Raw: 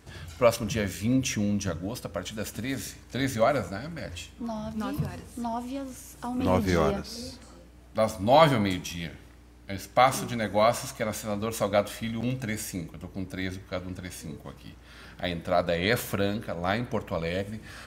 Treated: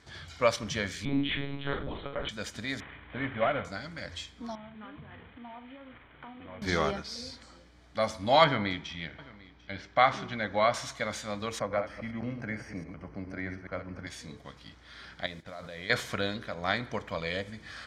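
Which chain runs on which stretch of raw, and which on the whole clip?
1.05–2.29 s: flutter echo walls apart 3.8 m, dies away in 0.41 s + monotone LPC vocoder at 8 kHz 140 Hz
2.80–3.65 s: CVSD coder 16 kbps + upward compressor, threshold -37 dBFS
4.55–6.62 s: CVSD coder 16 kbps + compression 4:1, threshold -40 dBFS + doubling 42 ms -11 dB
8.44–10.74 s: low-pass 3.1 kHz + delay 744 ms -21.5 dB
11.59–14.07 s: chunks repeated in reverse 104 ms, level -8 dB + boxcar filter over 12 samples + three bands compressed up and down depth 40%
15.26–15.90 s: tone controls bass +2 dB, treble -7 dB + level held to a coarse grid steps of 19 dB + modulation noise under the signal 20 dB
whole clip: low-pass 4 kHz 12 dB/octave; tilt shelf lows -7 dB, about 1.3 kHz; band-stop 2.7 kHz, Q 5.1

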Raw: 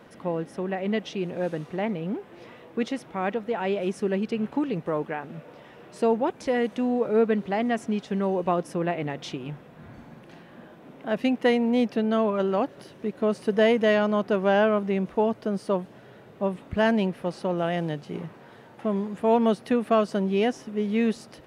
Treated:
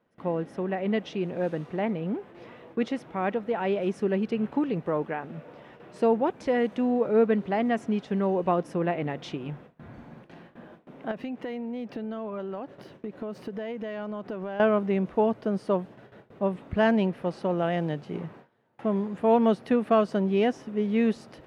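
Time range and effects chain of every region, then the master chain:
11.11–14.60 s: compression 16:1, threshold -30 dBFS + decimation joined by straight lines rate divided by 2×
whole clip: gate with hold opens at -38 dBFS; treble shelf 4.8 kHz -11 dB

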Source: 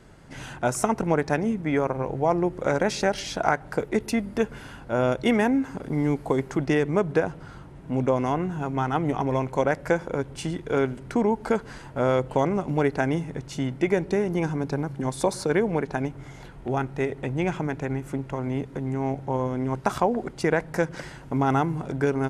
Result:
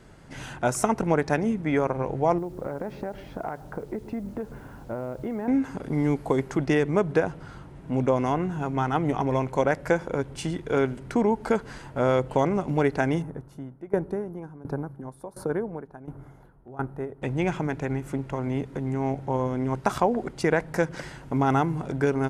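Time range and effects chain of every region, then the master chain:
2.38–5.48 s: low-pass 1.1 kHz + compression 10:1, threshold -27 dBFS + word length cut 10-bit, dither none
13.22–17.22 s: high-order bell 4 kHz -15 dB 2.3 oct + sawtooth tremolo in dB decaying 1.4 Hz, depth 19 dB
whole clip: none

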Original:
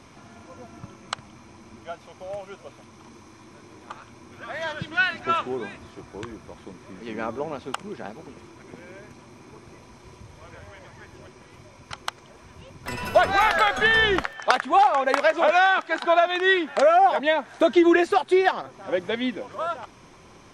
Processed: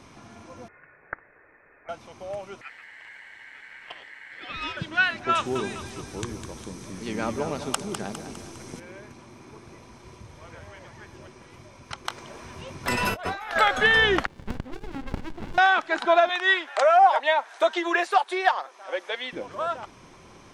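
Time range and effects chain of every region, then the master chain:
0.68–1.89 s: high-pass 1.1 kHz + frequency inversion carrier 2.8 kHz
2.61–4.77 s: tilt EQ -2.5 dB/octave + ring modulator 1.9 kHz
5.35–8.80 s: tone controls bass +6 dB, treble +14 dB + two-band feedback delay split 440 Hz, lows 101 ms, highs 203 ms, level -8.5 dB
12.05–13.56 s: bass shelf 170 Hz -5 dB + compressor with a negative ratio -31 dBFS + doubling 21 ms -12.5 dB
14.26–15.58 s: tone controls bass -3 dB, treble -7 dB + compression 1.5:1, threshold -38 dBFS + sliding maximum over 65 samples
16.29–19.33 s: Bessel high-pass 690 Hz, order 4 + dynamic bell 940 Hz, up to +6 dB, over -34 dBFS, Q 2
whole clip: none

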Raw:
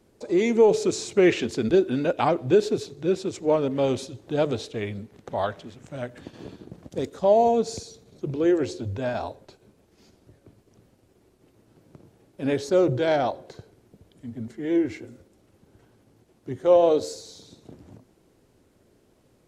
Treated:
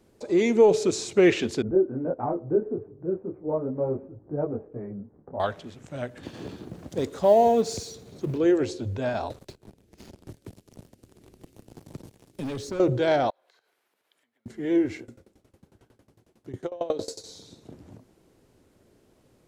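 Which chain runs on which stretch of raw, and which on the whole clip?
1.62–5.40 s: Gaussian low-pass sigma 7.8 samples + detune thickener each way 13 cents
6.23–8.38 s: companding laws mixed up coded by mu + high-pass 41 Hz
9.30–12.80 s: peaking EQ 1 kHz -15 dB 1.7 oct + waveshaping leveller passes 3 + three bands compressed up and down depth 70%
13.30–14.46 s: compression 8:1, threshold -49 dBFS + high-pass 1.3 kHz + peaking EQ 6.8 kHz -9 dB 1.5 oct
14.99–17.24 s: compressor with a negative ratio -21 dBFS, ratio -0.5 + sawtooth tremolo in dB decaying 11 Hz, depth 21 dB
whole clip: none

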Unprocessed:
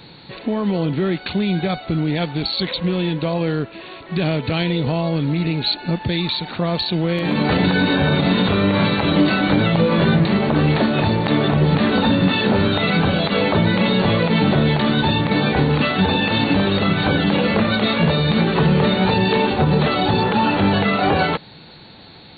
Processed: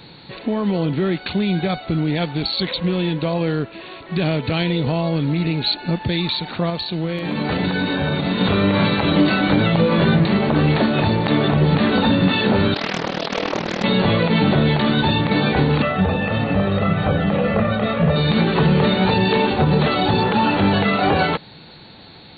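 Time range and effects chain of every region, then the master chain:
6.70–8.41 s: upward compressor, threshold -26 dBFS + feedback comb 80 Hz, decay 1.2 s, mix 40%
12.74–13.84 s: high-pass 250 Hz + AM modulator 39 Hz, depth 75% + loudspeaker Doppler distortion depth 0.73 ms
15.82–18.16 s: distance through air 470 m + comb 1.6 ms, depth 55%
whole clip: none

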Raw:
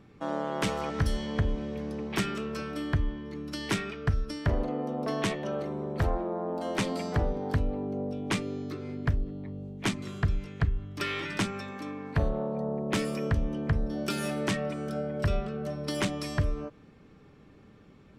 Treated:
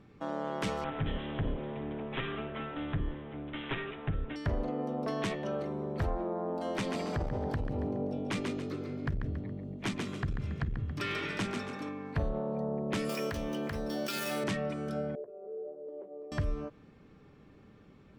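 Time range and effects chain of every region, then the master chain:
0.84–4.36 s: comb filter that takes the minimum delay 7.5 ms + careless resampling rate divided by 6×, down none, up filtered
6.76–11.89 s: frequency-shifting echo 139 ms, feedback 32%, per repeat +42 Hz, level -7 dB + transformer saturation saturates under 140 Hz
13.09–14.44 s: median filter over 5 samples + RIAA curve recording + level flattener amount 50%
15.15–16.32 s: doubling 16 ms -8 dB + compression 10:1, threshold -30 dBFS + Butterworth band-pass 480 Hz, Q 2.2
whole clip: treble shelf 6.9 kHz -6 dB; peak limiter -22 dBFS; trim -2 dB

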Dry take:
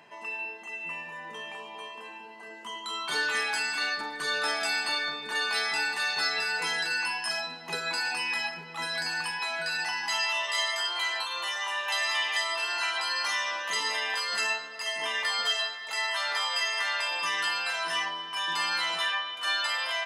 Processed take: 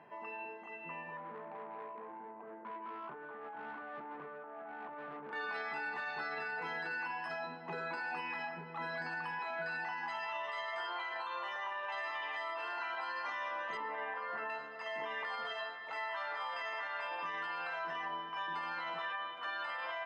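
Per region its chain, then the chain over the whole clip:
1.17–5.33 s: low-pass 1.2 kHz 24 dB/octave + compressor with a negative ratio -41 dBFS + transformer saturation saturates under 2.9 kHz
13.77–14.50 s: low-pass 1.9 kHz + hum notches 50/100/150/200/250/300/350/400/450/500 Hz
whole clip: low-pass 1.4 kHz 12 dB/octave; peak limiter -30.5 dBFS; trim -1 dB

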